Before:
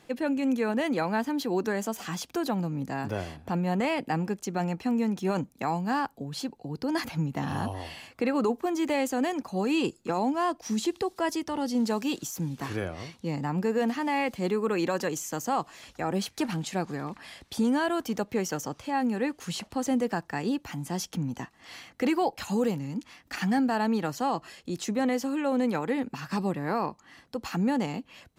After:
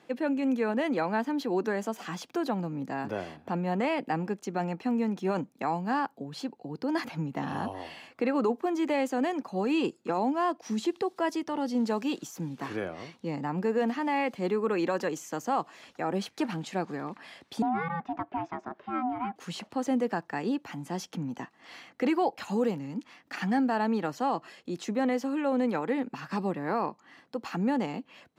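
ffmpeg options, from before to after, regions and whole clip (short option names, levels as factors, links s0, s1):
-filter_complex "[0:a]asettb=1/sr,asplit=3[s0][s1][s2];[s0]atrim=end=17.624[s3];[s1]atrim=start=17.62:end=19.36,asetpts=PTS-STARTPTS,afade=t=in:d=0.004:c=qsin,afade=t=out:st=1.736:d=0.004:c=qsin,lowpass=1800,aeval=exprs='val(0)*sin(2*PI*500*n/s)':c=same[s4];[s2]atrim=start=19.356[s5];[s3][s4]acrossfade=d=0.004:c1=hsin:c2=qsin[s6];[s6][s5]acrossfade=d=0.004:c1=qsin:c2=hsin,highpass=190,highshelf=f=5000:g=-12"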